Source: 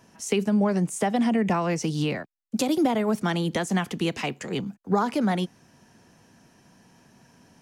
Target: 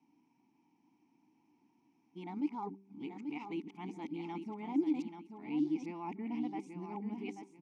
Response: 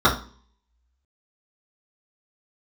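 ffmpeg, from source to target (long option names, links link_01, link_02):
-filter_complex "[0:a]areverse,asplit=3[link_01][link_02][link_03];[link_01]bandpass=frequency=300:width_type=q:width=8,volume=0dB[link_04];[link_02]bandpass=frequency=870:width_type=q:width=8,volume=-6dB[link_05];[link_03]bandpass=frequency=2240:width_type=q:width=8,volume=-9dB[link_06];[link_04][link_05][link_06]amix=inputs=3:normalize=0,equalizer=frequency=5700:width=2.7:gain=6,bandreject=frequency=195.6:width_type=h:width=4,bandreject=frequency=391.2:width_type=h:width=4,asplit=2[link_07][link_08];[link_08]aecho=0:1:835|1670|2505:0.422|0.11|0.0285[link_09];[link_07][link_09]amix=inputs=2:normalize=0,volume=-4.5dB"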